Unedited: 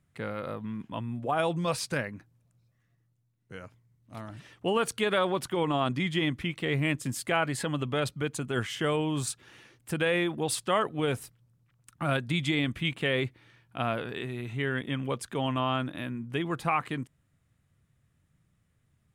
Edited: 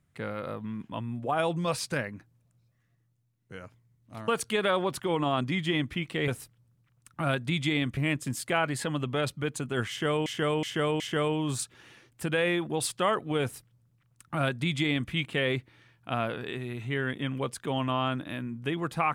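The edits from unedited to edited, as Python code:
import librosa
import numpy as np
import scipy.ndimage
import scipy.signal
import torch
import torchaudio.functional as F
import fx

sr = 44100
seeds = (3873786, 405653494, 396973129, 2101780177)

y = fx.edit(x, sr, fx.cut(start_s=4.28, length_s=0.48),
    fx.repeat(start_s=8.68, length_s=0.37, count=4),
    fx.duplicate(start_s=11.1, length_s=1.69, to_s=6.76), tone=tone)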